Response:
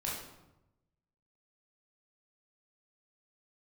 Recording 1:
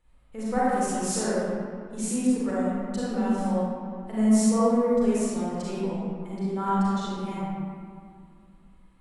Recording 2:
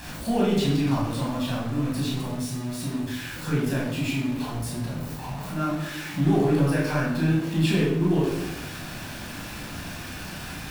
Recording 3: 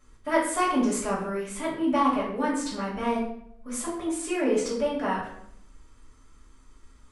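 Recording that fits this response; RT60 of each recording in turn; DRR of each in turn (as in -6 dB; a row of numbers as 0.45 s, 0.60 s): 2; 2.2 s, 0.95 s, 0.65 s; -9.0 dB, -5.0 dB, -7.0 dB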